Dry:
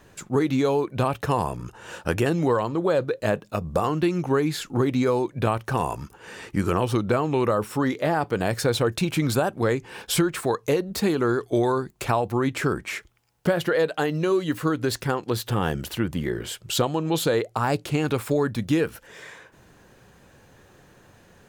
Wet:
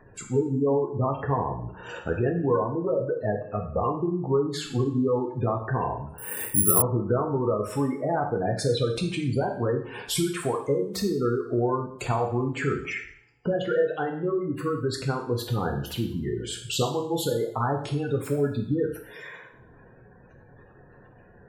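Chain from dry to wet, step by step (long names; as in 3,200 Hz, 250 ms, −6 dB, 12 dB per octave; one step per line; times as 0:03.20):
gate on every frequency bin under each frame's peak −15 dB strong
in parallel at 0 dB: downward compressor, threshold −32 dBFS, peak gain reduction 14.5 dB
on the sum: coupled-rooms reverb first 0.59 s, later 1.6 s, from −27 dB, DRR 1 dB
0:06.18–0:06.82: bad sample-rate conversion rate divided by 4×, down filtered, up zero stuff
level −6.5 dB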